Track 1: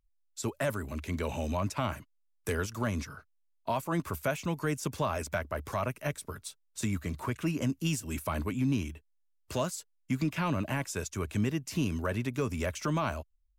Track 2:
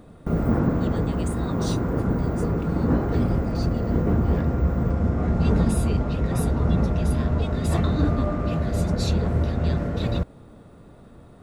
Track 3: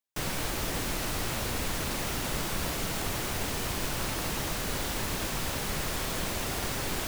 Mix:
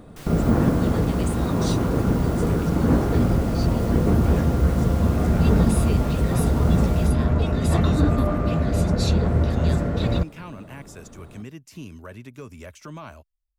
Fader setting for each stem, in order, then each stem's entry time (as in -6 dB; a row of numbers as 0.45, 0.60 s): -8.0, +2.5, -9.5 dB; 0.00, 0.00, 0.00 s